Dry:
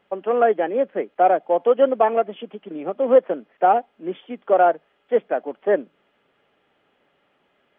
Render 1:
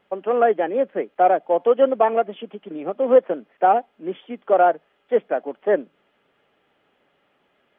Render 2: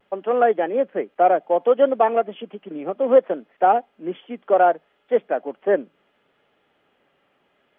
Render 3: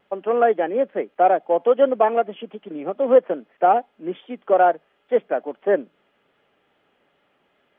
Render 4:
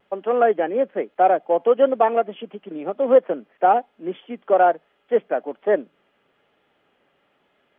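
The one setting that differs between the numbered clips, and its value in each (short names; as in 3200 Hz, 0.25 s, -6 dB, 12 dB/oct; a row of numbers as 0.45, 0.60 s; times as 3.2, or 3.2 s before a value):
vibrato, rate: 6.9, 0.66, 2.4, 1.1 Hz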